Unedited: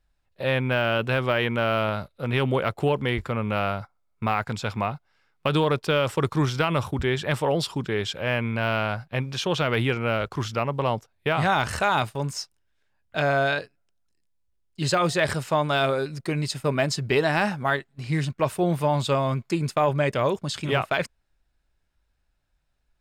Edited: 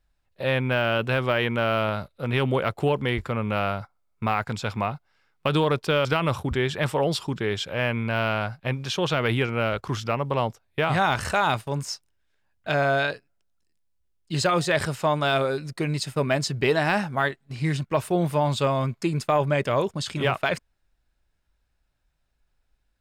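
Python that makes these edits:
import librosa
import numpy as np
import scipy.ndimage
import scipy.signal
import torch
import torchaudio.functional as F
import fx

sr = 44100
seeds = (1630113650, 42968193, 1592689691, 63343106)

y = fx.edit(x, sr, fx.cut(start_s=6.05, length_s=0.48), tone=tone)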